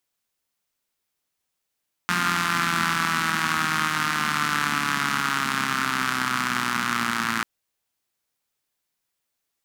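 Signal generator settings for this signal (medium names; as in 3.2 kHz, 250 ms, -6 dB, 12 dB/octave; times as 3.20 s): four-cylinder engine model, changing speed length 5.34 s, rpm 5300, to 3400, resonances 220/1300 Hz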